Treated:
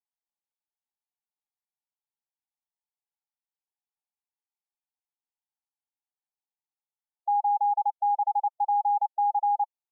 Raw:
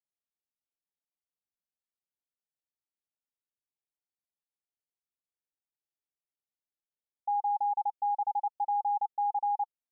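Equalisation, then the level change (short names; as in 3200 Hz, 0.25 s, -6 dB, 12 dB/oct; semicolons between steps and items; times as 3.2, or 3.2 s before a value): brick-wall FIR high-pass 680 Hz; synth low-pass 860 Hz, resonance Q 4.7; -8.0 dB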